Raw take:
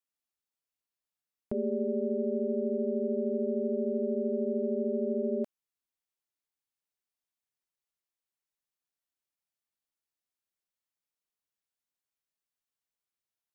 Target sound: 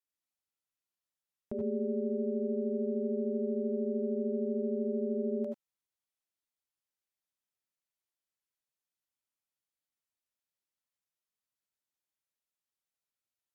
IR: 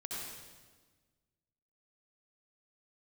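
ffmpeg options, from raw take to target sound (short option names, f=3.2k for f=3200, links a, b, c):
-filter_complex "[1:a]atrim=start_sample=2205,atrim=end_sample=3528,asetrate=35721,aresample=44100[a];[0:a][a]afir=irnorm=-1:irlink=0"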